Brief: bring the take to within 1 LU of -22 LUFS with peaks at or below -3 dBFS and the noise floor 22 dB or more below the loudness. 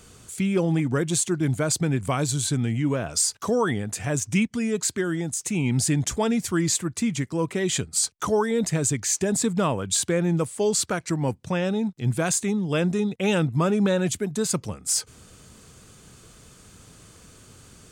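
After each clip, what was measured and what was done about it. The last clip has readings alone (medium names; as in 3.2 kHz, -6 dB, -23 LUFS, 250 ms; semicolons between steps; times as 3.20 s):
loudness -24.5 LUFS; peak level -11.0 dBFS; loudness target -22.0 LUFS
-> trim +2.5 dB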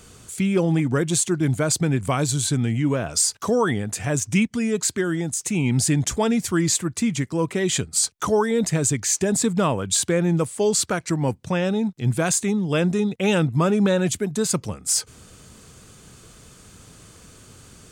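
loudness -22.0 LUFS; peak level -8.5 dBFS; noise floor -49 dBFS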